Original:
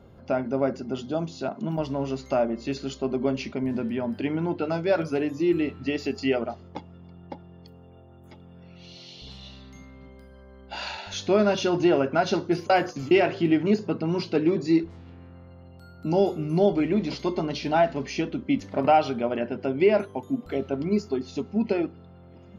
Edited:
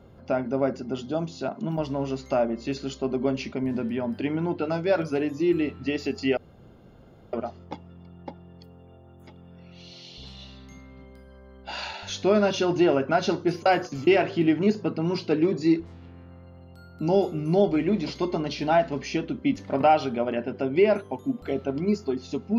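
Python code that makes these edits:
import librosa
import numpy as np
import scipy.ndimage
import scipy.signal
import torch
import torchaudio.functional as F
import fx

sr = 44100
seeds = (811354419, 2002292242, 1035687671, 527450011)

y = fx.edit(x, sr, fx.insert_room_tone(at_s=6.37, length_s=0.96), tone=tone)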